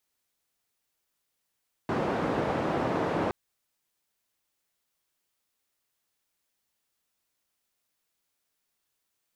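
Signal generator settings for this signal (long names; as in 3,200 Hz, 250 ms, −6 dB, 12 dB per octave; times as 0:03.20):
band-limited noise 120–690 Hz, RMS −28.5 dBFS 1.42 s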